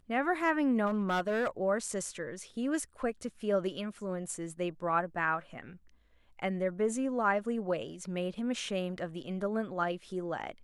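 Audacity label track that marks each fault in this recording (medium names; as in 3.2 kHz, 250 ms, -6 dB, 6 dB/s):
0.860000	1.480000	clipped -26 dBFS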